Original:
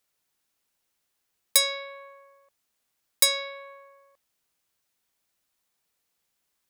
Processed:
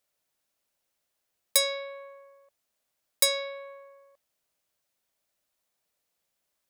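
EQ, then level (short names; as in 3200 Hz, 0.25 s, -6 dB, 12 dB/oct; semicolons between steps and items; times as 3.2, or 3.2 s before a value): bell 600 Hz +8 dB 0.42 oct; -3.0 dB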